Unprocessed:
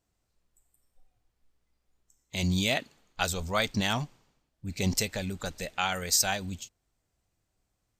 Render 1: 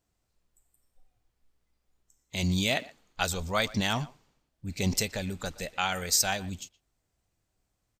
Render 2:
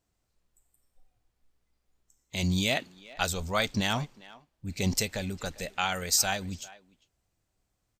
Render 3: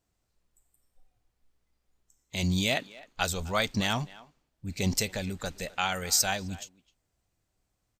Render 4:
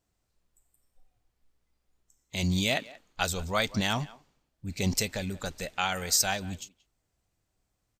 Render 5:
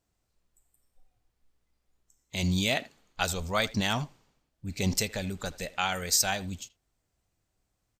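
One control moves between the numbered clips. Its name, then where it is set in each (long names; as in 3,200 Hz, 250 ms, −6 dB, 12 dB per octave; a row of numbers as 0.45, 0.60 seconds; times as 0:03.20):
far-end echo of a speakerphone, delay time: 120, 400, 260, 180, 80 milliseconds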